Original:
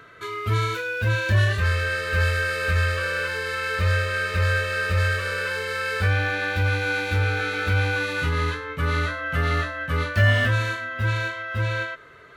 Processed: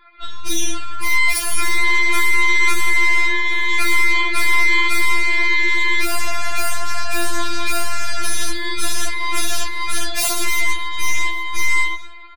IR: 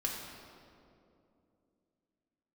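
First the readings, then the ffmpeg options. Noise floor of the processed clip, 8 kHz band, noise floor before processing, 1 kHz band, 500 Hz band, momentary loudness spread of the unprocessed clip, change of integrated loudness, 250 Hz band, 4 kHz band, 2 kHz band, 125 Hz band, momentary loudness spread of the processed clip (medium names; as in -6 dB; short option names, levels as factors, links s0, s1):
-26 dBFS, +18.5 dB, -40 dBFS, +5.5 dB, -4.5 dB, 6 LU, +5.0 dB, +2.5 dB, +8.0 dB, +6.0 dB, under -10 dB, 8 LU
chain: -filter_complex "[0:a]bandreject=f=1600:w=5,asplit=2[s0][s1];[1:a]atrim=start_sample=2205,lowpass=2200[s2];[s1][s2]afir=irnorm=-1:irlink=0,volume=0.237[s3];[s0][s3]amix=inputs=2:normalize=0,lowpass=f=2200:t=q:w=0.5098,lowpass=f=2200:t=q:w=0.6013,lowpass=f=2200:t=q:w=0.9,lowpass=f=2200:t=q:w=2.563,afreqshift=-2600,asplit=2[s4][s5];[s5]asoftclip=type=hard:threshold=0.106,volume=0.708[s6];[s4][s6]amix=inputs=2:normalize=0,aeval=exprs='0.473*(cos(1*acos(clip(val(0)/0.473,-1,1)))-cos(1*PI/2))+0.168*(cos(6*acos(clip(val(0)/0.473,-1,1)))-cos(6*PI/2))+0.211*(cos(8*acos(clip(val(0)/0.473,-1,1)))-cos(8*PI/2))':c=same,aecho=1:1:827:0.0794,afftfilt=real='re*4*eq(mod(b,16),0)':imag='im*4*eq(mod(b,16),0)':win_size=2048:overlap=0.75"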